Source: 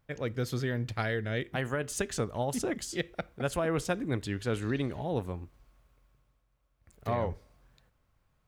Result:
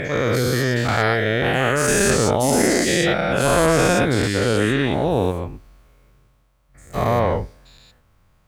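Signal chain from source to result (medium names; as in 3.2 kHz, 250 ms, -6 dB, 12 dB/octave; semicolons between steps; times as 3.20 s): every event in the spectrogram widened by 240 ms; trim +7.5 dB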